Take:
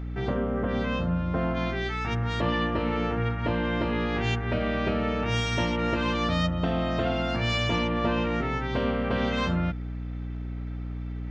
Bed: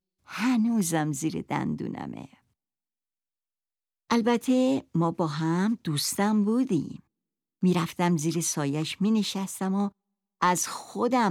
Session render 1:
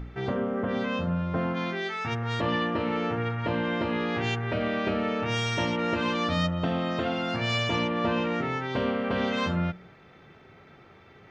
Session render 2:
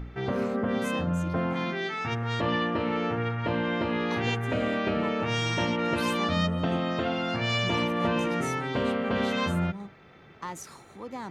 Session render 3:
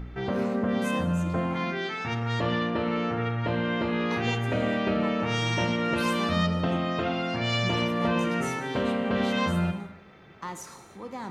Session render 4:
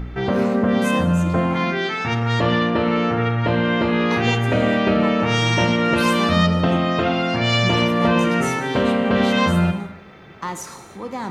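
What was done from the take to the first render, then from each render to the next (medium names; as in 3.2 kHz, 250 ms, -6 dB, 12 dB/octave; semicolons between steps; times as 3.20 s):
de-hum 60 Hz, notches 11
add bed -14.5 dB
gated-style reverb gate 350 ms falling, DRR 8 dB
trim +8.5 dB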